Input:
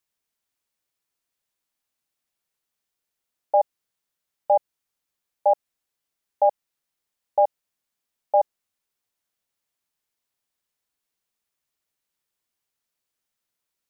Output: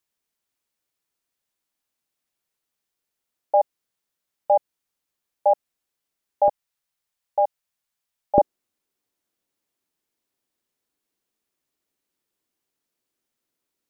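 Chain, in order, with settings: bell 310 Hz +2.5 dB 1.4 oct, from 6.48 s -6.5 dB, from 8.38 s +10.5 dB

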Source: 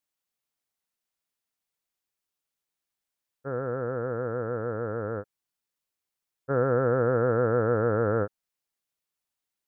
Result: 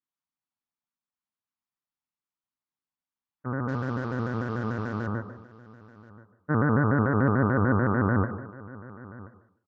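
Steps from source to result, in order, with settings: 3.68–5.07 CVSD 32 kbps; ten-band EQ 125 Hz +6 dB, 250 Hz +11 dB, 500 Hz -10 dB, 1000 Hz +11 dB; spectral noise reduction 8 dB; air absorption 84 m; echo 1.03 s -19.5 dB; on a send at -11 dB: reverb RT60 0.60 s, pre-delay 97 ms; on the sum: shaped vibrato square 6.8 Hz, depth 160 cents; gain -2.5 dB

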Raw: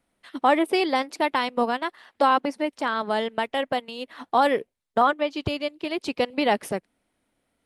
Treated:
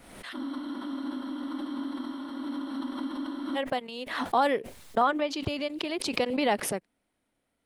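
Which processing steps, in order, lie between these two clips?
spectral freeze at 0.36, 3.21 s; backwards sustainer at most 50 dB/s; gain -4.5 dB

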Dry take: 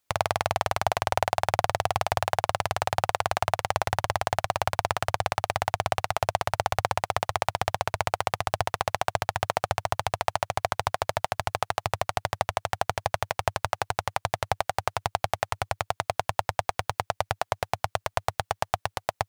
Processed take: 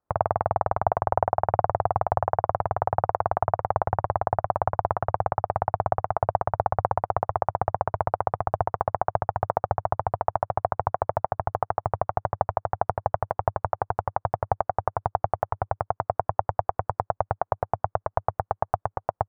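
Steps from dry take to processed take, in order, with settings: LPF 1200 Hz 24 dB/oct; gain +3 dB

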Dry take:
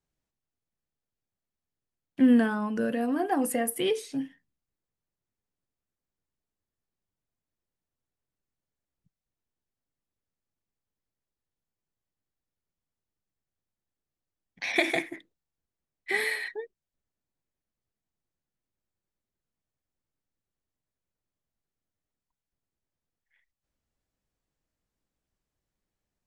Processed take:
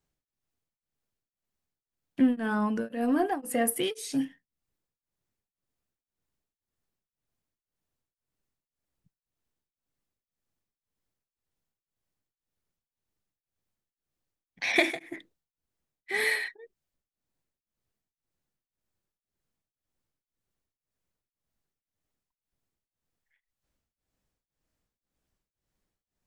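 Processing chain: 3.83–4.25 high shelf 3700 Hz +11 dB; in parallel at -5 dB: soft clip -24 dBFS, distortion -9 dB; on the sum: beating tremolo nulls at 1.9 Hz

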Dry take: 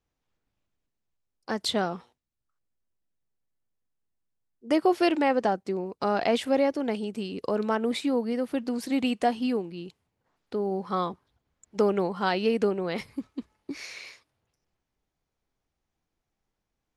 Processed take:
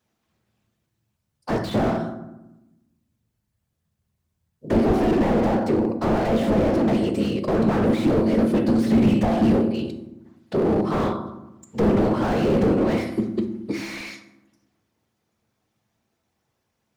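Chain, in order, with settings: whisperiser; HPF 89 Hz 12 dB/oct; notches 60/120/180/240/300/360/420/480 Hz; on a send at -6 dB: reverb RT60 0.95 s, pre-delay 5 ms; on the sum: slew limiter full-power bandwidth 20 Hz; gain +9 dB

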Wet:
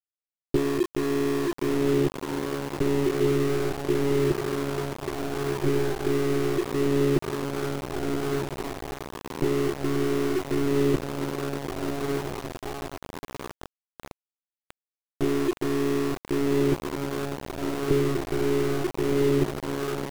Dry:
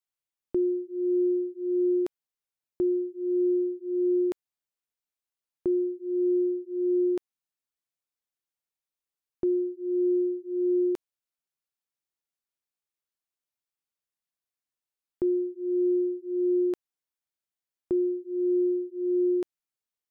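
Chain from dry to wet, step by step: bell 250 Hz +14 dB 2.1 oct; in parallel at -2 dB: negative-ratio compressor -20 dBFS, ratio -1; on the sum: monotone LPC vocoder at 8 kHz 140 Hz; diffused feedback echo 1.316 s, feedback 60%, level -4 dB; sample gate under -21 dBFS; gain -6 dB

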